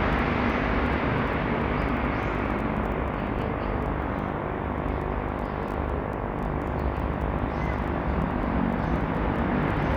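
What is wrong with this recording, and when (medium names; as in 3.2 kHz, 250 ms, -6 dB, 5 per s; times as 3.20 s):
buzz 50 Hz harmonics 23 -32 dBFS
crackle 11 per s -35 dBFS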